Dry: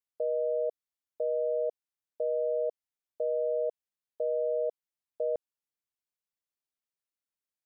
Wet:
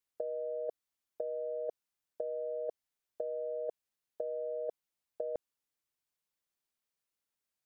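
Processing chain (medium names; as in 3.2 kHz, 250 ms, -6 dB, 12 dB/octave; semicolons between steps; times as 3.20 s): compressor with a negative ratio -33 dBFS, ratio -0.5; trim -2 dB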